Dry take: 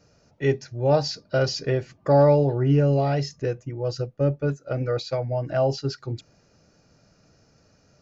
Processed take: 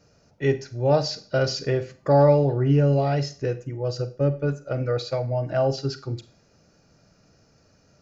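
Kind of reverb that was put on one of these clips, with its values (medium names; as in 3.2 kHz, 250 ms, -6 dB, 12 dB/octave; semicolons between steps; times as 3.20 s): Schroeder reverb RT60 0.4 s, combs from 33 ms, DRR 12.5 dB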